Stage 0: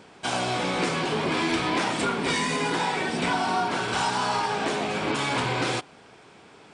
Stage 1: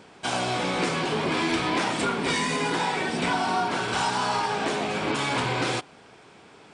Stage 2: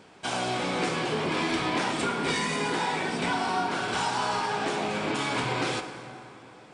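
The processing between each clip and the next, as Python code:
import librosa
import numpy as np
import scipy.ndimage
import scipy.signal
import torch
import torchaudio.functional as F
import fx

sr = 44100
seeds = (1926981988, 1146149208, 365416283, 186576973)

y1 = x
y2 = fx.rev_plate(y1, sr, seeds[0], rt60_s=3.0, hf_ratio=0.6, predelay_ms=0, drr_db=7.5)
y2 = F.gain(torch.from_numpy(y2), -3.0).numpy()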